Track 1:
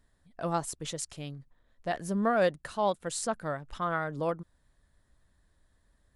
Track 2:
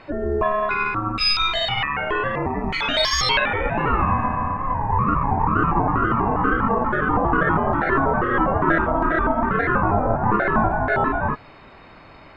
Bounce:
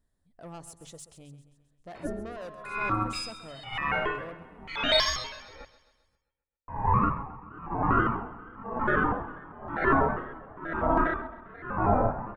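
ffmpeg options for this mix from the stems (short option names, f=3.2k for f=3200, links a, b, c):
-filter_complex "[0:a]equalizer=f=2.1k:t=o:w=2.6:g=-6.5,asoftclip=type=tanh:threshold=-31.5dB,volume=-6.5dB,asplit=2[a][b];[b]volume=-13.5dB[c];[1:a]aeval=exprs='val(0)*pow(10,-27*(0.5-0.5*cos(2*PI*1*n/s))/20)':c=same,adelay=1950,volume=-2.5dB,asplit=3[d][e][f];[d]atrim=end=5.65,asetpts=PTS-STARTPTS,afade=t=out:st=5.646:d=0.004:c=hsin[g];[e]atrim=start=5.65:end=6.68,asetpts=PTS-STARTPTS,volume=0[h];[f]atrim=start=6.68,asetpts=PTS-STARTPTS,afade=t=in:d=0.004:c=hsin[i];[g][h][i]concat=n=3:v=0:a=1,asplit=2[j][k];[k]volume=-17dB[l];[c][l]amix=inputs=2:normalize=0,aecho=0:1:132|264|396|528|660|792|924|1056:1|0.52|0.27|0.141|0.0731|0.038|0.0198|0.0103[m];[a][j][m]amix=inputs=3:normalize=0,bandreject=f=50:t=h:w=6,bandreject=f=100:t=h:w=6,bandreject=f=150:t=h:w=6"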